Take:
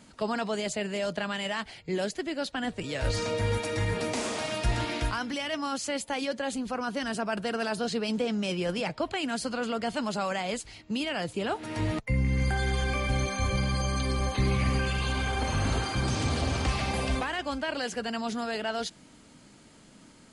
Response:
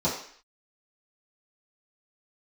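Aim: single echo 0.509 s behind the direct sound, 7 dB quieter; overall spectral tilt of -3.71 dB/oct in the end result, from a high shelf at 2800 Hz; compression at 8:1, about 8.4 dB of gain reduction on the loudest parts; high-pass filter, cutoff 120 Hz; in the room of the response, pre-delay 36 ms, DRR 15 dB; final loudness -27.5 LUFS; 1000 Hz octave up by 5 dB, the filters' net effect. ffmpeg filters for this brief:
-filter_complex "[0:a]highpass=120,equalizer=f=1k:t=o:g=6,highshelf=f=2.8k:g=4.5,acompressor=threshold=-32dB:ratio=8,aecho=1:1:509:0.447,asplit=2[a][b];[1:a]atrim=start_sample=2205,adelay=36[c];[b][c]afir=irnorm=-1:irlink=0,volume=-26.5dB[d];[a][d]amix=inputs=2:normalize=0,volume=7dB"

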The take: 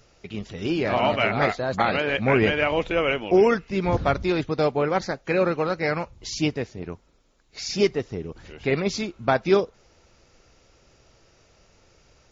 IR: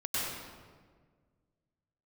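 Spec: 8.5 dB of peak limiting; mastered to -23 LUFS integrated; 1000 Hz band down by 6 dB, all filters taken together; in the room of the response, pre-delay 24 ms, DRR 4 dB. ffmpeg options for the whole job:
-filter_complex "[0:a]equalizer=f=1k:t=o:g=-9,alimiter=limit=-16.5dB:level=0:latency=1,asplit=2[a][b];[1:a]atrim=start_sample=2205,adelay=24[c];[b][c]afir=irnorm=-1:irlink=0,volume=-11dB[d];[a][d]amix=inputs=2:normalize=0,volume=4dB"

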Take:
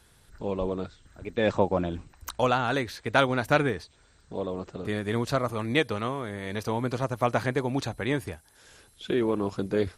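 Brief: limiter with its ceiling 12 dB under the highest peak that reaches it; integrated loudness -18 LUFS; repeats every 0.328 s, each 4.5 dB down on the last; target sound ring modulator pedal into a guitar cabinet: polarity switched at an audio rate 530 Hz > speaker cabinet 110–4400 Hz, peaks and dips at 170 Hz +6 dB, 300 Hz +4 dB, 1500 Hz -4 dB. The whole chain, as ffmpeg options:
-af "alimiter=limit=-17dB:level=0:latency=1,aecho=1:1:328|656|984|1312|1640|1968|2296|2624|2952:0.596|0.357|0.214|0.129|0.0772|0.0463|0.0278|0.0167|0.01,aeval=exprs='val(0)*sgn(sin(2*PI*530*n/s))':c=same,highpass=110,equalizer=f=170:t=q:w=4:g=6,equalizer=f=300:t=q:w=4:g=4,equalizer=f=1.5k:t=q:w=4:g=-4,lowpass=f=4.4k:w=0.5412,lowpass=f=4.4k:w=1.3066,volume=11.5dB"

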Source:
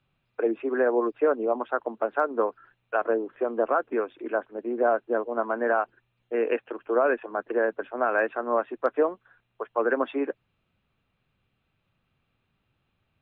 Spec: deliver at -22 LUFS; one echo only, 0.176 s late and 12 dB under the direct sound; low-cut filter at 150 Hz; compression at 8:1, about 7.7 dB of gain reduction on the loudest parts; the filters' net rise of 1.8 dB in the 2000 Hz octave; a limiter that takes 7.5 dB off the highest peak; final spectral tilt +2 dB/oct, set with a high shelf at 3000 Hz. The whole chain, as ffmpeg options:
-af "highpass=150,equalizer=f=2k:t=o:g=4.5,highshelf=f=3k:g=-5.5,acompressor=threshold=-26dB:ratio=8,alimiter=limit=-23dB:level=0:latency=1,aecho=1:1:176:0.251,volume=12.5dB"

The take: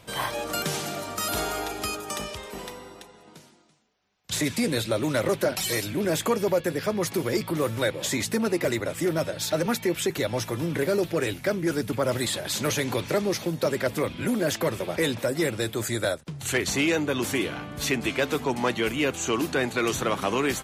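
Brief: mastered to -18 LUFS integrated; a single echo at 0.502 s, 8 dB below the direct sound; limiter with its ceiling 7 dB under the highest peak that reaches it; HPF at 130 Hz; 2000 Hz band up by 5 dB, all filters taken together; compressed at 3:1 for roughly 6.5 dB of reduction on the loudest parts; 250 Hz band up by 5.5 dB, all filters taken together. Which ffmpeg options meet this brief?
-af "highpass=130,equalizer=f=250:t=o:g=7.5,equalizer=f=2k:t=o:g=6,acompressor=threshold=-25dB:ratio=3,alimiter=limit=-20dB:level=0:latency=1,aecho=1:1:502:0.398,volume=11dB"

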